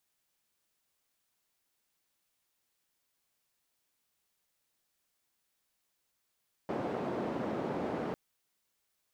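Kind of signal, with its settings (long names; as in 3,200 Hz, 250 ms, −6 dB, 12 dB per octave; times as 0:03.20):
band-limited noise 200–510 Hz, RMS −35.5 dBFS 1.45 s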